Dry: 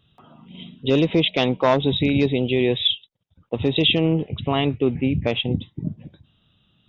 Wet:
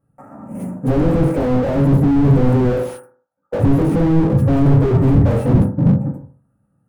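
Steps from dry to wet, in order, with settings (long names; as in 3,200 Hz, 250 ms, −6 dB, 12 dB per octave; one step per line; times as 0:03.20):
running median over 9 samples
0:02.72–0:03.59: high-pass filter 650 Hz 12 dB per octave
0:04.64–0:05.25: comb filter 2.1 ms, depth 67%
0:05.84–0:06.23: time-frequency box erased 950–2,000 Hz
leveller curve on the samples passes 3
0:01.43–0:02.14: output level in coarse steps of 17 dB
Butterworth band-reject 3,600 Hz, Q 0.51
convolution reverb RT60 0.45 s, pre-delay 3 ms, DRR −8.5 dB
slew-rate limiting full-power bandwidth 93 Hz
level −3 dB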